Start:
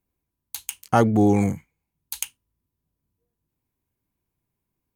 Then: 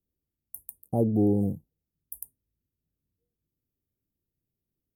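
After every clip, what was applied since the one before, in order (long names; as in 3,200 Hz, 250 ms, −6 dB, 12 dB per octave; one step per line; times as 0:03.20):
inverse Chebyshev band-stop filter 1,500–5,100 Hz, stop band 60 dB
level −5 dB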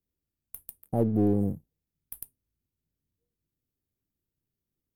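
gain on one half-wave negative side −3 dB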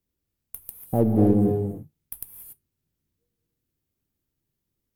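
reverb whose tail is shaped and stops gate 310 ms rising, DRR 4.5 dB
level +4.5 dB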